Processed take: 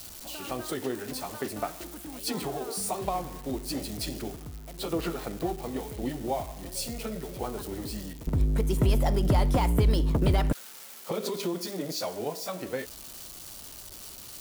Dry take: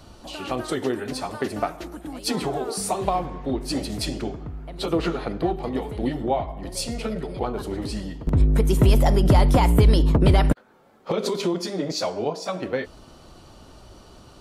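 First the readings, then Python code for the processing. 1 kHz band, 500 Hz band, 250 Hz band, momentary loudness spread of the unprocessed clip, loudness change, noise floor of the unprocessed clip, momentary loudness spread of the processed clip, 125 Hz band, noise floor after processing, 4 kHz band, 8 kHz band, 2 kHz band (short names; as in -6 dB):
-7.0 dB, -7.0 dB, -7.0 dB, 13 LU, -7.0 dB, -48 dBFS, 16 LU, -7.0 dB, -45 dBFS, -5.5 dB, -2.0 dB, -6.5 dB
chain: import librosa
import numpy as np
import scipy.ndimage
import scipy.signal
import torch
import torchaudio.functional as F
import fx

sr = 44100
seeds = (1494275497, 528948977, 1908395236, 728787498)

y = x + 0.5 * 10.0 ** (-25.5 / 20.0) * np.diff(np.sign(x), prepend=np.sign(x[:1]))
y = y * 10.0 ** (-7.0 / 20.0)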